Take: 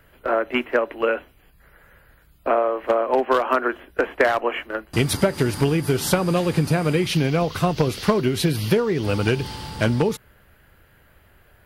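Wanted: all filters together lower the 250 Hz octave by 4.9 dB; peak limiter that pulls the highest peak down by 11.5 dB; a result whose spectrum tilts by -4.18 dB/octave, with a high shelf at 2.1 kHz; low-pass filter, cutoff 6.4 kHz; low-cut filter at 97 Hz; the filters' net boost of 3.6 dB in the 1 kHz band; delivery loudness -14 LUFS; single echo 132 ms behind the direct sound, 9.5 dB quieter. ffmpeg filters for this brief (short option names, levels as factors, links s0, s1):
-af "highpass=97,lowpass=6400,equalizer=f=250:t=o:g=-8,equalizer=f=1000:t=o:g=3.5,highshelf=f=2100:g=7,alimiter=limit=0.224:level=0:latency=1,aecho=1:1:132:0.335,volume=3.16"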